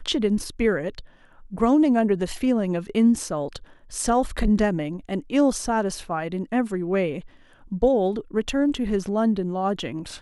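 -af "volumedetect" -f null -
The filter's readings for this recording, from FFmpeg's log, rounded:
mean_volume: -23.3 dB
max_volume: -8.5 dB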